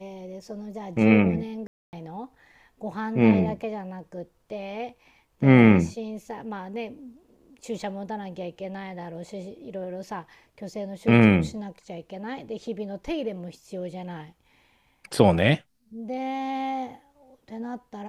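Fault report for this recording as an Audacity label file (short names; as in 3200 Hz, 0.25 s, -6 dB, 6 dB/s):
1.670000	1.930000	gap 0.259 s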